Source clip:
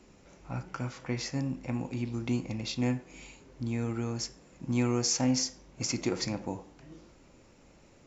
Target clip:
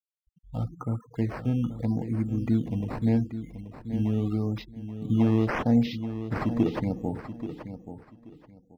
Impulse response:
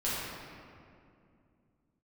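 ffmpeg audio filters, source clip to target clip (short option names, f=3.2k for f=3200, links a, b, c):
-filter_complex "[0:a]asetrate=40517,aresample=44100,afftfilt=real='re*gte(hypot(re,im),0.0158)':imag='im*gte(hypot(re,im),0.0158)':win_size=1024:overlap=0.75,acrusher=samples=10:mix=1:aa=0.000001:lfo=1:lforange=10:lforate=0.8,acrossover=split=4400[a][b];[b]acompressor=threshold=-56dB:ratio=4:attack=1:release=60[c];[a][c]amix=inputs=2:normalize=0,tiltshelf=f=1.1k:g=6.5,aecho=1:1:831|1662|2493:0.282|0.062|0.0136"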